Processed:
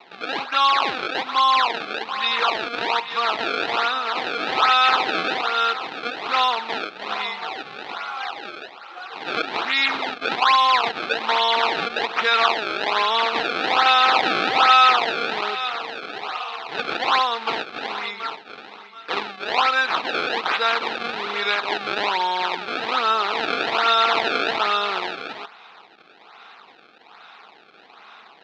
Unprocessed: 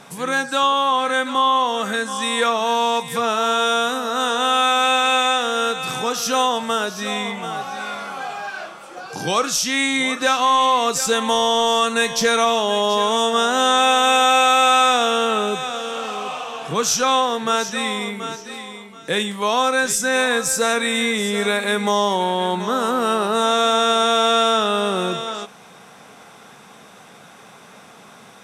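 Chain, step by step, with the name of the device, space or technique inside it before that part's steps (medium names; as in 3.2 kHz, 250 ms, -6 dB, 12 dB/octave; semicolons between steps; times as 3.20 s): circuit-bent sampling toy (decimation with a swept rate 26×, swing 160% 1.2 Hz; cabinet simulation 550–4200 Hz, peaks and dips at 560 Hz -8 dB, 870 Hz +3 dB, 1.3 kHz +5 dB, 2.5 kHz +5 dB, 3.9 kHz +8 dB); trim -1.5 dB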